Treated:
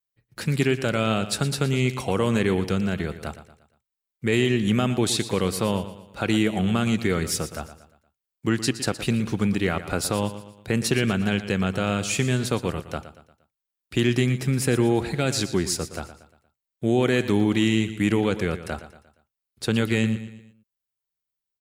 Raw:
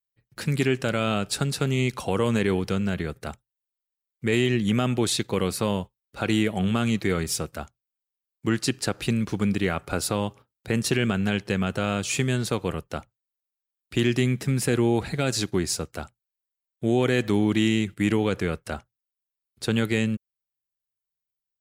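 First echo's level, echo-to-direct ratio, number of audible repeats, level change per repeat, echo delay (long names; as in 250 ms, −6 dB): −13.0 dB, −12.0 dB, 4, −7.5 dB, 117 ms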